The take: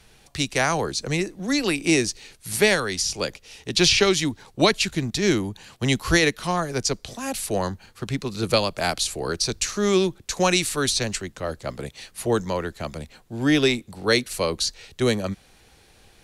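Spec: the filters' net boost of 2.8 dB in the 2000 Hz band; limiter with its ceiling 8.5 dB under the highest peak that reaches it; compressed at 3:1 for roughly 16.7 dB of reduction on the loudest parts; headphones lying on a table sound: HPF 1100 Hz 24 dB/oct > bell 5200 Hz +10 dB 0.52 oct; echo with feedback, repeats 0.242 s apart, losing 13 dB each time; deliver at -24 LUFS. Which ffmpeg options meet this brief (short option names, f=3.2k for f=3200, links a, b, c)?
-af "equalizer=f=2k:t=o:g=3,acompressor=threshold=-37dB:ratio=3,alimiter=level_in=1.5dB:limit=-24dB:level=0:latency=1,volume=-1.5dB,highpass=f=1.1k:w=0.5412,highpass=f=1.1k:w=1.3066,equalizer=f=5.2k:t=o:w=0.52:g=10,aecho=1:1:242|484|726:0.224|0.0493|0.0108,volume=12.5dB"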